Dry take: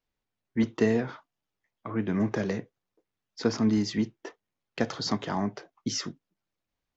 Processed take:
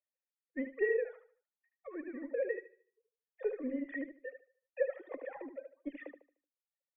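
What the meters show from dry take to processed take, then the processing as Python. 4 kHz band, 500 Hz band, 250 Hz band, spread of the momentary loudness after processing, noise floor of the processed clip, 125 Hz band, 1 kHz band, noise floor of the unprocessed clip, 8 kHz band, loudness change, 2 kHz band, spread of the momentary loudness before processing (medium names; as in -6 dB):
under -35 dB, -3.5 dB, -15.0 dB, 16 LU, under -85 dBFS, under -40 dB, -19.0 dB, under -85 dBFS, no reading, -9.5 dB, -4.0 dB, 14 LU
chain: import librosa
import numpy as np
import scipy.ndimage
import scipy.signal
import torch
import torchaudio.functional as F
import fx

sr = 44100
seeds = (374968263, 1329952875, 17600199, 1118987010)

p1 = fx.sine_speech(x, sr)
p2 = scipy.signal.sosfilt(scipy.signal.butter(2, 210.0, 'highpass', fs=sr, output='sos'), p1)
p3 = fx.clip_asym(p2, sr, top_db=-36.5, bottom_db=-17.5)
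p4 = p2 + (p3 * librosa.db_to_amplitude(-7.0))
p5 = fx.formant_cascade(p4, sr, vowel='e')
p6 = p5 + fx.echo_feedback(p5, sr, ms=75, feedback_pct=42, wet_db=-5.5, dry=0)
p7 = fx.dereverb_blind(p6, sr, rt60_s=0.59)
y = p7 * librosa.db_to_amplitude(1.0)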